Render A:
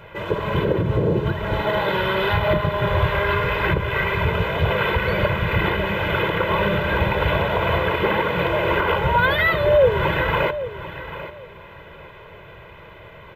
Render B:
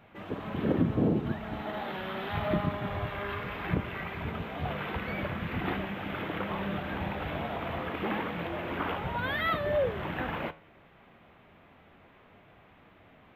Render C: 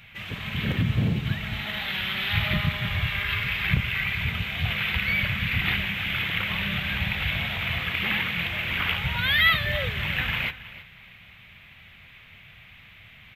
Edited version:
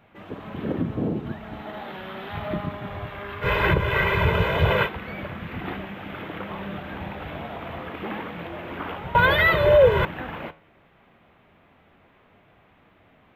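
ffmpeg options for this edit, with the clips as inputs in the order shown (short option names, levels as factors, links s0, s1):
-filter_complex "[0:a]asplit=2[s0][s1];[1:a]asplit=3[s2][s3][s4];[s2]atrim=end=3.47[s5];[s0]atrim=start=3.41:end=4.89[s6];[s3]atrim=start=4.83:end=9.152[s7];[s1]atrim=start=9.148:end=10.052[s8];[s4]atrim=start=10.048[s9];[s5][s6]acrossfade=d=0.06:c1=tri:c2=tri[s10];[s10][s7]acrossfade=d=0.06:c1=tri:c2=tri[s11];[s11][s8]acrossfade=d=0.004:c1=hsin:c2=hsin[s12];[s12][s9]acrossfade=d=0.004:c1=hsin:c2=hsin"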